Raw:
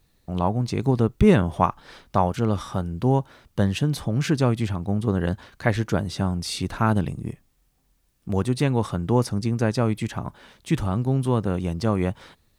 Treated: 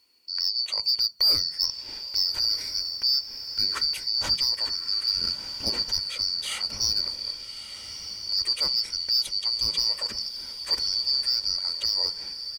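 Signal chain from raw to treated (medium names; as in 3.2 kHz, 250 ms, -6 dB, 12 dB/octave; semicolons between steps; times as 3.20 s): four frequency bands reordered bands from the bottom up 2341; comb 2.1 ms, depth 34%; in parallel at 0 dB: peak limiter -13.5 dBFS, peak gain reduction 10 dB; on the sum: overload inside the chain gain 7.5 dB; echo that smears into a reverb 1251 ms, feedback 42%, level -10 dB; on a send at -17 dB: reverberation RT60 0.30 s, pre-delay 3 ms; on the sum: trim -8 dB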